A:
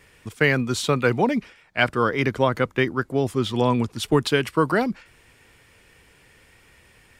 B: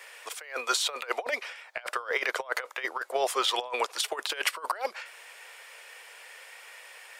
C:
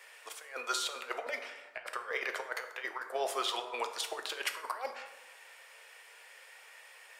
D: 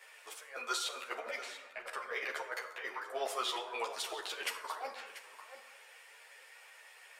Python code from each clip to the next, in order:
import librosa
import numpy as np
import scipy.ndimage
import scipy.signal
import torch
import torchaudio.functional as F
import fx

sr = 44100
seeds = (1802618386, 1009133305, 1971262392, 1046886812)

y1 = scipy.signal.sosfilt(scipy.signal.butter(6, 530.0, 'highpass', fs=sr, output='sos'), x)
y1 = fx.over_compress(y1, sr, threshold_db=-31.0, ratio=-0.5)
y1 = y1 * librosa.db_to_amplitude(1.5)
y2 = fx.rev_plate(y1, sr, seeds[0], rt60_s=1.2, hf_ratio=0.5, predelay_ms=0, drr_db=5.5)
y2 = y2 * librosa.db_to_amplitude(-7.5)
y3 = y2 + 10.0 ** (-14.0 / 20.0) * np.pad(y2, (int(688 * sr / 1000.0), 0))[:len(y2)]
y3 = fx.ensemble(y3, sr)
y3 = y3 * librosa.db_to_amplitude(1.0)